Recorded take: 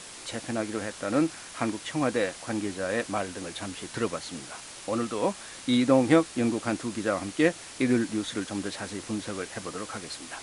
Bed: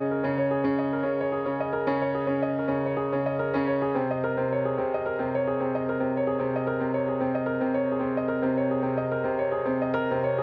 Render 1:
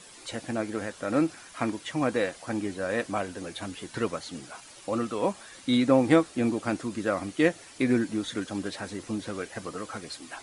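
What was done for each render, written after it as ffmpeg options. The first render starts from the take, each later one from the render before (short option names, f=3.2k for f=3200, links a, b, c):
-af "afftdn=nr=9:nf=-44"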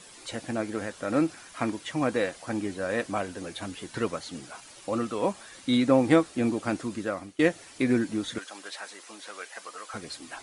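-filter_complex "[0:a]asettb=1/sr,asplit=3[a][b][c];[a]atrim=end=8.384[d];[b]atrim=start=8.38:end=9.94,asetpts=PTS-STARTPTS,afade=t=in:d=0.004:c=qsin,afade=t=out:st=1.556:d=0.004:c=qsin,highpass=810[e];[c]atrim=start=9.936[f];[d][e]acrossfade=d=0.004:c1=hsin:c2=qsin[g];[g][f]acrossfade=d=0.004:c1=qsin:c2=hsin,asplit=2[h][i];[h]atrim=end=7.39,asetpts=PTS-STARTPTS,afade=t=out:st=6.91:d=0.48:silence=0.158489[j];[i]atrim=start=7.39,asetpts=PTS-STARTPTS,afade=t=in:d=0.004:c=hsin:silence=0.158489[k];[j][k]concat=n=2:v=0:a=1"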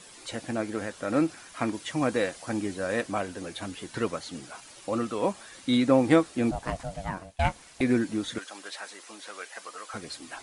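-filter_complex "[0:a]asettb=1/sr,asplit=3[a][b][c];[a]atrim=end=1.744[d];[b]atrim=start=1.74:end=3.01,asetpts=PTS-STARTPTS,afade=t=in:d=0.004:c=qsin,afade=t=out:st=1.266:d=0.004:c=qsin,bass=f=250:g=1,treble=f=4k:g=3[e];[c]atrim=start=3.006[f];[d][e]acrossfade=d=0.004:c1=hsin:c2=qsin[g];[g][f]acrossfade=d=0.004:c1=qsin:c2=hsin,asettb=1/sr,asplit=3[h][i][j];[h]atrim=end=6.514[k];[i]atrim=start=6.51:end=7.81,asetpts=PTS-STARTPTS,afade=t=in:d=0.004:c=qsin,afade=t=out:st=1.296:d=0.004:c=qsin,aeval=exprs='val(0)*sin(2*PI*380*n/s)':c=same[l];[j]atrim=start=7.806[m];[k][l]acrossfade=d=0.004:c1=hsin:c2=qsin[n];[n][m]acrossfade=d=0.004:c1=qsin:c2=hsin"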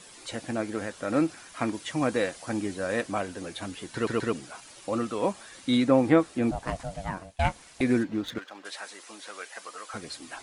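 -filter_complex "[0:a]asettb=1/sr,asplit=3[a][b][c];[a]atrim=end=5.844[d];[b]atrim=start=5.84:end=6.67,asetpts=PTS-STARTPTS,afade=t=in:d=0.004:c=qsin,afade=t=out:st=0.826:d=0.004:c=qsin,acrossover=split=2700[e][f];[f]acompressor=threshold=-48dB:ratio=4:attack=1:release=60[g];[e][g]amix=inputs=2:normalize=0[h];[c]atrim=start=6.666[i];[d][h]acrossfade=d=0.004:c1=hsin:c2=qsin[j];[j][i]acrossfade=d=0.004:c1=qsin:c2=hsin,asettb=1/sr,asplit=3[k][l][m];[k]atrim=end=8.034[n];[l]atrim=start=8.03:end=8.65,asetpts=PTS-STARTPTS,afade=t=in:d=0.004:c=qsin,afade=t=out:st=0.616:d=0.004:c=qsin,adynamicsmooth=sensitivity=7.5:basefreq=2.3k[o];[m]atrim=start=8.646[p];[n][o]acrossfade=d=0.004:c1=hsin:c2=qsin[q];[q][p]acrossfade=d=0.004:c1=qsin:c2=hsin,asplit=4[r][s][t][u];[r]atrim=end=4.072[v];[s]atrim=start=3.938:end=4.072[w];[t]atrim=start=3.938:end=4.072[x];[u]atrim=start=4.328[y];[v][w]acrossfade=d=0.004:c1=hsin:c2=hsin[z];[z][x]acrossfade=d=0.004:c1=hsin:c2=hsin[aa];[aa][y]acrossfade=d=0.004:c1=hsin:c2=hsin"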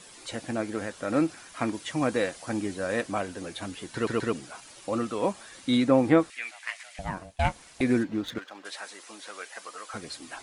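-filter_complex "[0:a]asettb=1/sr,asplit=3[a][b][c];[a]atrim=end=6.304[d];[b]atrim=start=6.3:end=6.99,asetpts=PTS-STARTPTS,afade=t=in:d=0.004:c=qsin,afade=t=out:st=0.686:d=0.004:c=qsin,highpass=f=2.1k:t=q:w=3.3[e];[c]atrim=start=6.986[f];[d][e]acrossfade=d=0.004:c1=hsin:c2=qsin[g];[g][f]acrossfade=d=0.004:c1=qsin:c2=hsin"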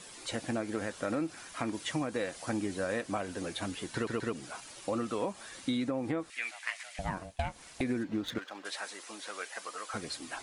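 -af "alimiter=limit=-16dB:level=0:latency=1:release=208,acompressor=threshold=-29dB:ratio=6"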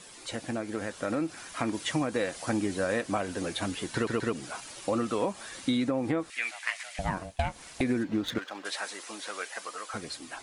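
-af "dynaudnorm=f=330:g=7:m=4.5dB"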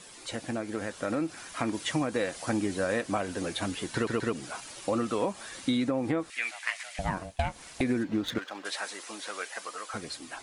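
-af anull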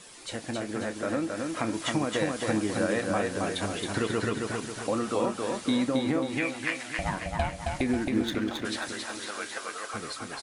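-filter_complex "[0:a]asplit=2[a][b];[b]adelay=28,volume=-13dB[c];[a][c]amix=inputs=2:normalize=0,asplit=2[d][e];[e]aecho=0:1:270|540|810|1080|1350|1620:0.668|0.307|0.141|0.0651|0.0299|0.0138[f];[d][f]amix=inputs=2:normalize=0"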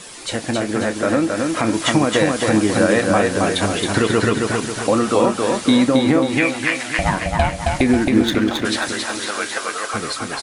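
-af "volume=12dB,alimiter=limit=-3dB:level=0:latency=1"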